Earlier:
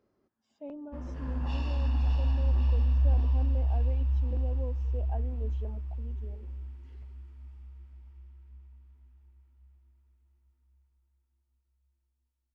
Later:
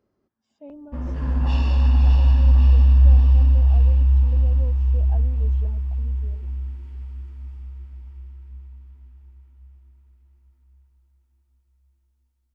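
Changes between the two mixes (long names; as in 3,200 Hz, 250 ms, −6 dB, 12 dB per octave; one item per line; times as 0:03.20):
background +8.5 dB
master: add bass and treble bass +3 dB, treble +1 dB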